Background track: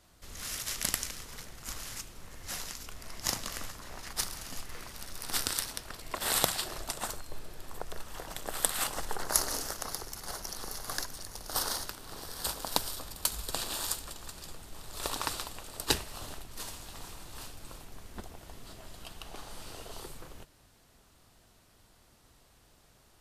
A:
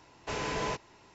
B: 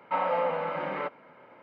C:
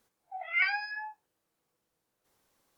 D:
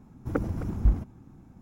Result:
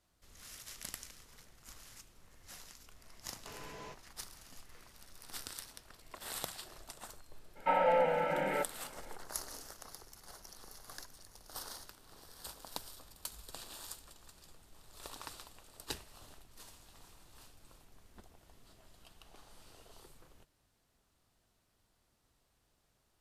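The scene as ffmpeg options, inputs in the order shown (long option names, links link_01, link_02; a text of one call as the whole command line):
ffmpeg -i bed.wav -i cue0.wav -i cue1.wav -filter_complex "[0:a]volume=-13.5dB[link_01];[2:a]asuperstop=centerf=1100:order=8:qfactor=3.2[link_02];[1:a]atrim=end=1.14,asetpts=PTS-STARTPTS,volume=-16dB,afade=type=in:duration=0.004:curve=hsin,afade=type=out:start_time=1.136:duration=0.004:curve=hsin,adelay=3180[link_03];[link_02]atrim=end=1.62,asetpts=PTS-STARTPTS,volume=-0.5dB,afade=type=in:duration=0.02,afade=type=out:start_time=1.6:duration=0.02,adelay=7550[link_04];[link_01][link_03][link_04]amix=inputs=3:normalize=0" out.wav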